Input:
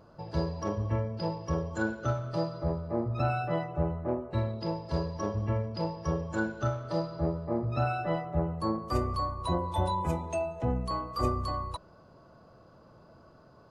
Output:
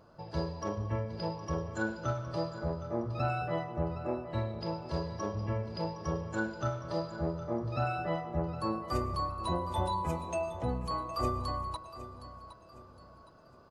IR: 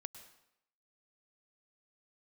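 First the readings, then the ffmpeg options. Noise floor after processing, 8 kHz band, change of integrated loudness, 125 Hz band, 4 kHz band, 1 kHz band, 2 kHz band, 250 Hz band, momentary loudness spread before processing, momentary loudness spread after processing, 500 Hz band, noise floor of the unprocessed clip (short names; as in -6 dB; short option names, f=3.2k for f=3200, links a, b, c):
-56 dBFS, -1.0 dB, -3.0 dB, -4.0 dB, -1.0 dB, -1.5 dB, -1.5 dB, -3.5 dB, 4 LU, 7 LU, -2.5 dB, -57 dBFS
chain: -filter_complex "[0:a]aecho=1:1:764|1528|2292|3056:0.2|0.0738|0.0273|0.0101,asplit=2[a][b];[1:a]atrim=start_sample=2205,lowshelf=f=390:g=-10.5[c];[b][c]afir=irnorm=-1:irlink=0,volume=3.5dB[d];[a][d]amix=inputs=2:normalize=0,volume=-6.5dB"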